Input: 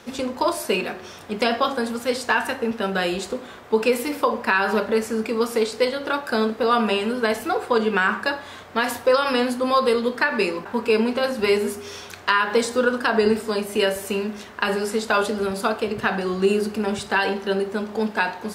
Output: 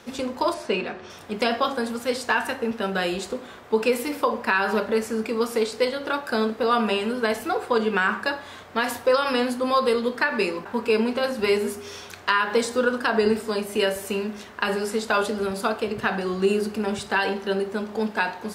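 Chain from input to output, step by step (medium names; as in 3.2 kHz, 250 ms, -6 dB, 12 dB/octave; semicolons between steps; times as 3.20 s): 0.54–1.10 s: distance through air 100 m; trim -2 dB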